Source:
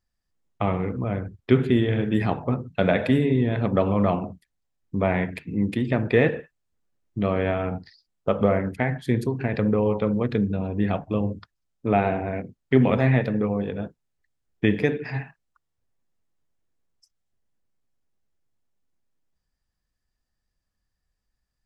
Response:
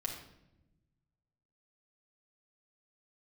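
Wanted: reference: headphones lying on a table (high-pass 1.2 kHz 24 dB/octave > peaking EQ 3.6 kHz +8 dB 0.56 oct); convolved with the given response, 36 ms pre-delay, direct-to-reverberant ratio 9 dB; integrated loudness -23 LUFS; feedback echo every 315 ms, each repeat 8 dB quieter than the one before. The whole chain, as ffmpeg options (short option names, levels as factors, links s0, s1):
-filter_complex "[0:a]aecho=1:1:315|630|945|1260|1575:0.398|0.159|0.0637|0.0255|0.0102,asplit=2[s0][s1];[1:a]atrim=start_sample=2205,adelay=36[s2];[s1][s2]afir=irnorm=-1:irlink=0,volume=0.316[s3];[s0][s3]amix=inputs=2:normalize=0,highpass=f=1200:w=0.5412,highpass=f=1200:w=1.3066,equalizer=f=3600:t=o:w=0.56:g=8,volume=3.35"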